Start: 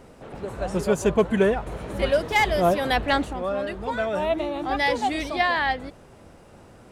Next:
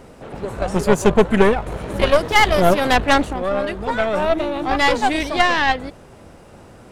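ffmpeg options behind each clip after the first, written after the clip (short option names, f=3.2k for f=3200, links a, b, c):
-af "aeval=exprs='0.376*(cos(1*acos(clip(val(0)/0.376,-1,1)))-cos(1*PI/2))+0.0841*(cos(4*acos(clip(val(0)/0.376,-1,1)))-cos(4*PI/2))':c=same,volume=5.5dB"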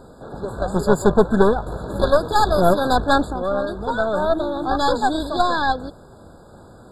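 -af "afftfilt=real='re*eq(mod(floor(b*sr/1024/1700),2),0)':imag='im*eq(mod(floor(b*sr/1024/1700),2),0)':win_size=1024:overlap=0.75,volume=-1dB"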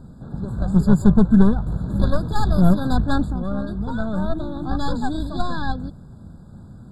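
-af "lowshelf=f=290:t=q:w=1.5:g=14,volume=-8.5dB"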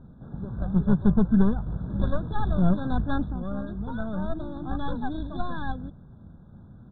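-af "aresample=8000,aresample=44100,volume=-6.5dB"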